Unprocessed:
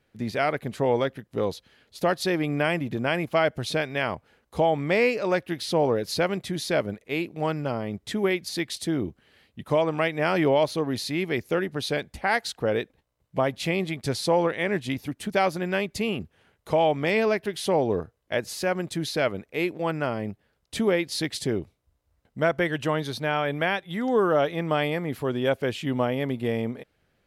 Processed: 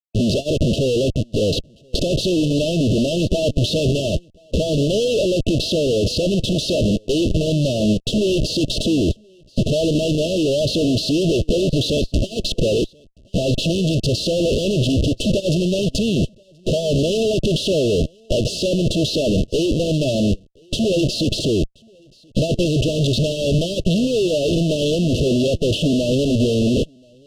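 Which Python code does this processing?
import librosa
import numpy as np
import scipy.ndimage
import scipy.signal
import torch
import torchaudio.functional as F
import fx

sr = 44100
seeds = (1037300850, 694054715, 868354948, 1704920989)

p1 = fx.leveller(x, sr, passes=2)
p2 = fx.schmitt(p1, sr, flips_db=-36.5)
p3 = fx.brickwall_bandstop(p2, sr, low_hz=680.0, high_hz=2600.0)
p4 = fx.air_absorb(p3, sr, metres=79.0)
p5 = p4 + fx.echo_single(p4, sr, ms=1029, db=-16.5, dry=0)
p6 = fx.upward_expand(p5, sr, threshold_db=-32.0, expansion=2.5)
y = p6 * 10.0 ** (8.5 / 20.0)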